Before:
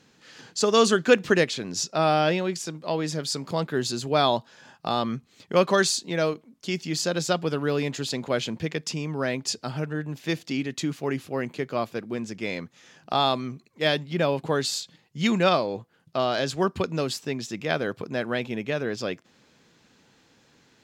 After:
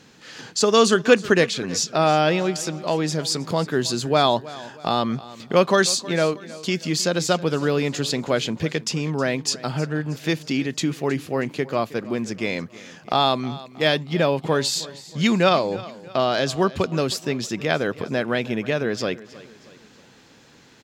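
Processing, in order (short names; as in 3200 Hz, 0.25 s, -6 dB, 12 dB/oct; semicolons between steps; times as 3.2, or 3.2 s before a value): in parallel at 0 dB: compressor, threshold -34 dBFS, peak gain reduction 21 dB; on the sum: feedback echo 0.317 s, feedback 45%, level -18.5 dB; gain +2 dB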